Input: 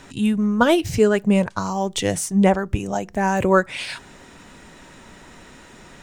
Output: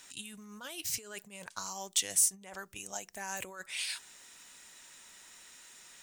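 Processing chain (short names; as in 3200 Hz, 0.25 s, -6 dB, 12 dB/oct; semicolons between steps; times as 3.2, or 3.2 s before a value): negative-ratio compressor -21 dBFS, ratio -1; pre-emphasis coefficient 0.97; gain -2.5 dB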